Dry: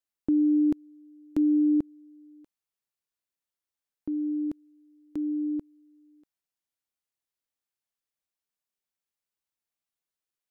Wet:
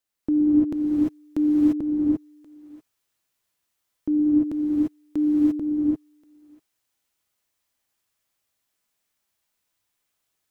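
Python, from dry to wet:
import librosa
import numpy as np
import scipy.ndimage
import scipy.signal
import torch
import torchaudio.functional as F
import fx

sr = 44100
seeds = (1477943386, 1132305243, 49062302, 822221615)

p1 = fx.over_compress(x, sr, threshold_db=-28.0, ratio=-0.5)
p2 = x + F.gain(torch.from_numpy(p1), -1.5).numpy()
p3 = fx.rev_gated(p2, sr, seeds[0], gate_ms=370, shape='rising', drr_db=-7.0)
y = F.gain(torch.from_numpy(p3), -1.5).numpy()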